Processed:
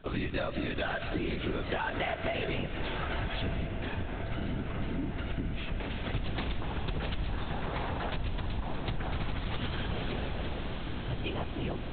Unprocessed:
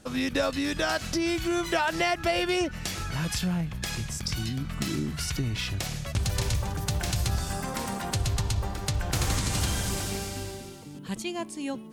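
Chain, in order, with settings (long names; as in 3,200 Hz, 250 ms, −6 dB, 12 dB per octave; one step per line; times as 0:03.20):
linear-prediction vocoder at 8 kHz whisper
feedback delay with all-pass diffusion 1,224 ms, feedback 68%, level −11 dB
convolution reverb RT60 0.75 s, pre-delay 115 ms, DRR 12.5 dB
downward compressor, threshold −29 dBFS, peak gain reduction 9 dB
0:03.67–0:05.90: high-shelf EQ 3,000 Hz −12 dB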